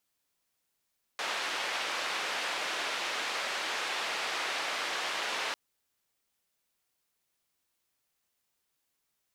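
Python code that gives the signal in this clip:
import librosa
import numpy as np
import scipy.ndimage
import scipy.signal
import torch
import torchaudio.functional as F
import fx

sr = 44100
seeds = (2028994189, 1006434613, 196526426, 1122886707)

y = fx.band_noise(sr, seeds[0], length_s=4.35, low_hz=500.0, high_hz=3100.0, level_db=-34.0)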